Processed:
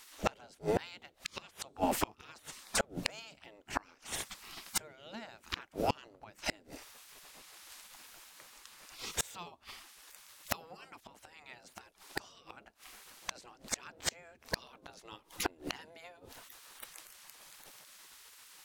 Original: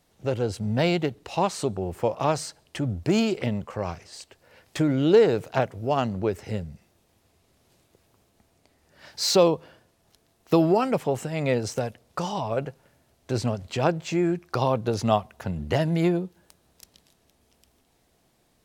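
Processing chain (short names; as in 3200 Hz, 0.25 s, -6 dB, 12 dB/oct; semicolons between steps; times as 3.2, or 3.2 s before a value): spectral gate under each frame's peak -15 dB weak; low shelf 150 Hz +4.5 dB; flipped gate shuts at -33 dBFS, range -32 dB; gain +15.5 dB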